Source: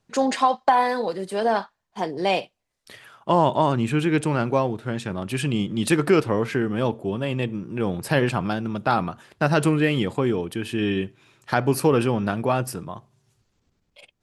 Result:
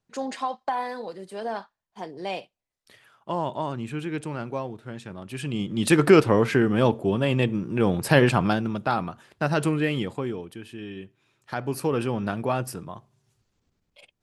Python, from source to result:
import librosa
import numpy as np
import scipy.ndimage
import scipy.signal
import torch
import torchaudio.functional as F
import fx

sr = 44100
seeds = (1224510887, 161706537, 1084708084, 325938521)

y = fx.gain(x, sr, db=fx.line((5.27, -9.5), (6.04, 3.0), (8.5, 3.0), (8.94, -4.0), (9.95, -4.0), (10.88, -14.5), (12.26, -3.5)))